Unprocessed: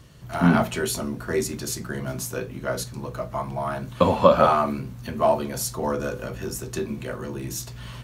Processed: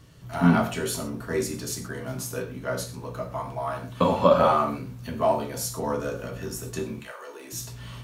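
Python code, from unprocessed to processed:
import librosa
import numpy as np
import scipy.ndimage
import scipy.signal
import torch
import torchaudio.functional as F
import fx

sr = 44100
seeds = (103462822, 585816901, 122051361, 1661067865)

y = fx.highpass(x, sr, hz=fx.line((6.99, 890.0), (7.52, 290.0)), slope=24, at=(6.99, 7.52), fade=0.02)
y = fx.rev_gated(y, sr, seeds[0], gate_ms=150, shape='falling', drr_db=3.5)
y = y * librosa.db_to_amplitude(-4.0)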